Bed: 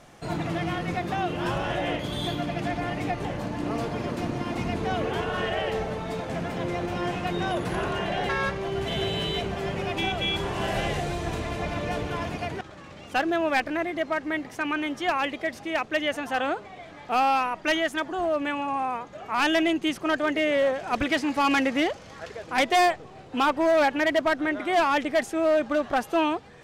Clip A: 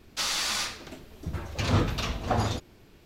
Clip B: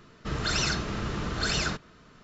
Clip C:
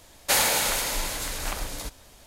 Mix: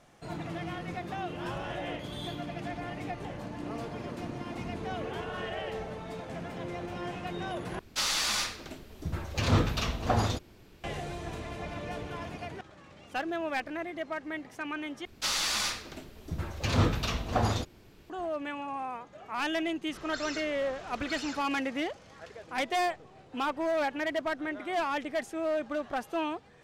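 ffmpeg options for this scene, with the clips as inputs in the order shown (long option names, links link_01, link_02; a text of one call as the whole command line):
ffmpeg -i bed.wav -i cue0.wav -i cue1.wav -filter_complex "[1:a]asplit=2[link_01][link_02];[0:a]volume=-8.5dB[link_03];[2:a]equalizer=frequency=120:width=0.4:gain=-14[link_04];[link_03]asplit=3[link_05][link_06][link_07];[link_05]atrim=end=7.794[link_08];[link_01]atrim=end=3.05,asetpts=PTS-STARTPTS,volume=-0.5dB[link_09];[link_06]atrim=start=10.836:end=15.054[link_10];[link_02]atrim=end=3.05,asetpts=PTS-STARTPTS,volume=-1dB[link_11];[link_07]atrim=start=18.096[link_12];[link_04]atrim=end=2.23,asetpts=PTS-STARTPTS,volume=-12dB,afade=type=in:duration=0.004:curve=hsin,afade=type=out:start_time=2.226:duration=0.004:curve=hsin,adelay=19670[link_13];[link_08][link_09]acrossfade=duration=0.004:curve1=hsin:curve2=hsin[link_14];[link_14][link_10]acrossfade=duration=0.004:curve1=hsin:curve2=hsin[link_15];[link_15][link_11]acrossfade=duration=0.004:curve1=hsin:curve2=hsin[link_16];[link_16][link_12]acrossfade=duration=0.004:curve1=hsin:curve2=hsin[link_17];[link_17][link_13]amix=inputs=2:normalize=0" out.wav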